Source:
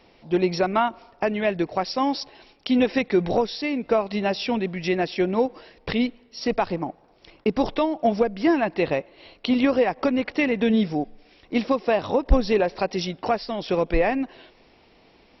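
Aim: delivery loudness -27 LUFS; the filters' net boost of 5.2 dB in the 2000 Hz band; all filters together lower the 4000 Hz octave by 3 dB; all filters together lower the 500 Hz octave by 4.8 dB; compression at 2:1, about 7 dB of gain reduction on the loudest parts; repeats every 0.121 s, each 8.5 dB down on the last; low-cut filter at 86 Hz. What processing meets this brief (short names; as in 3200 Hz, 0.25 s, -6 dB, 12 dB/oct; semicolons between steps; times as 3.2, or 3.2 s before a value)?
HPF 86 Hz; bell 500 Hz -6.5 dB; bell 2000 Hz +8.5 dB; bell 4000 Hz -7.5 dB; compressor 2:1, threshold -30 dBFS; feedback echo 0.121 s, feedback 38%, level -8.5 dB; gain +3.5 dB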